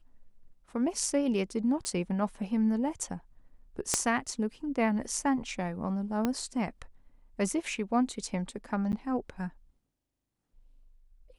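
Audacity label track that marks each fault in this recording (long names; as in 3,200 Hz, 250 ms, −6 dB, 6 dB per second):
1.850000	1.850000	click −20 dBFS
3.940000	3.940000	click −10 dBFS
6.250000	6.250000	click −15 dBFS
8.920000	8.930000	drop-out 9.6 ms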